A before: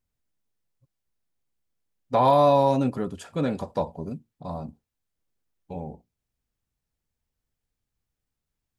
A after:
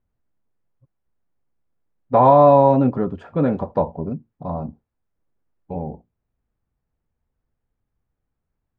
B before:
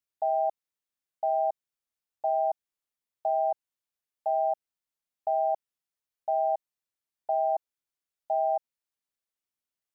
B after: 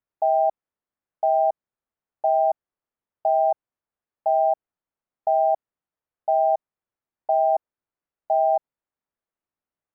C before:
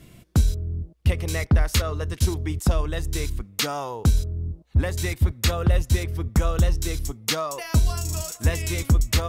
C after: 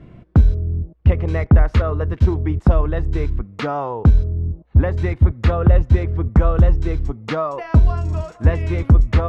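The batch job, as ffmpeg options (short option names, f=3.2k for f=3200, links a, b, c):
-af "lowpass=1.4k,volume=7dB"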